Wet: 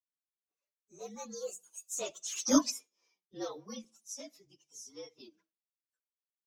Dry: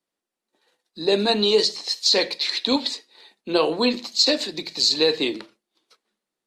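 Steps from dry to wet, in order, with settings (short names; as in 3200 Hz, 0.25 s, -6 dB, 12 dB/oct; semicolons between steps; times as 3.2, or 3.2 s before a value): inharmonic rescaling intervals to 114%; Doppler pass-by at 2.59, 23 m/s, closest 2.9 m; reverb removal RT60 1.7 s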